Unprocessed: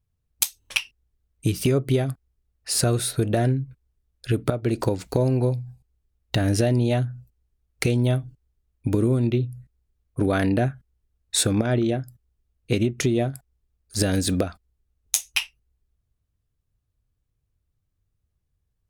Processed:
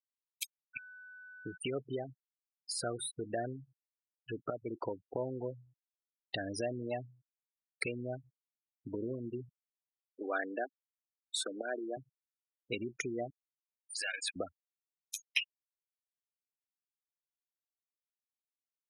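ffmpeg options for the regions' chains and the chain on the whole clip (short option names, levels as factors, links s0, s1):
-filter_complex "[0:a]asettb=1/sr,asplit=3[s0][s1][s2];[s0]atrim=end=0.734[s3];[s1]atrim=start=0.73:end=1.58,asetpts=PTS-STARTPTS,afade=t=in:d=0.004:c=qsin,afade=t=out:st=0.846:d=0.004:c=qsin,aeval=exprs='if(lt(val(0),0),0.447*val(0),val(0))':c=same,lowpass=f=1900:w=0.5412,lowpass=f=1900:w=1.3066,aeval=exprs='val(0)+0.00891*sin(2*PI*1500*n/s)':c=same[s4];[s2]atrim=start=1.576[s5];[s3][s4]acrossfade=d=0.004:c1=hsin:c2=qsin[s6];[s6][s5]acrossfade=d=0.004:c1=qsin:c2=hsin,asettb=1/sr,asplit=3[s7][s8][s9];[s7]atrim=end=9.494[s10];[s8]atrim=start=9.49:end=11.97,asetpts=PTS-STARTPTS,afade=t=in:d=0.004:c=qsin,afade=t=out:st=2.476:d=0.004:c=qsin,highpass=f=290:w=0.5412,highpass=f=290:w=1.3066,acrusher=bits=3:mode=log:mix=0:aa=0.000001[s11];[s9]atrim=start=11.966[s12];[s10][s11]acrossfade=d=0.004:c1=hsin:c2=qsin[s13];[s13][s12]acrossfade=d=0.004:c1=qsin:c2=hsin,asettb=1/sr,asplit=3[s14][s15][s16];[s14]atrim=end=13.304[s17];[s15]atrim=start=13.3:end=14.36,asetpts=PTS-STARTPTS,afade=t=in:d=0.004:c=qsin,afade=t=out:st=1.056:d=0.004:c=qsin,aeval=exprs='val(0)+0.5*0.0316*sgn(val(0))':c=same,highpass=950,equalizer=f=2300:t=o:w=0.72:g=9[s18];[s16]atrim=start=14.356[s19];[s17][s18]acrossfade=d=0.004:c1=hsin:c2=qsin[s20];[s20][s19]acrossfade=d=0.004:c1=qsin:c2=hsin,afftfilt=real='re*gte(hypot(re,im),0.0794)':imag='im*gte(hypot(re,im),0.0794)':win_size=1024:overlap=0.75,highpass=f=1300:p=1,acrossover=split=3000[s21][s22];[s22]acompressor=threshold=0.0251:ratio=4:attack=1:release=60[s23];[s21][s23]amix=inputs=2:normalize=0,volume=0.631"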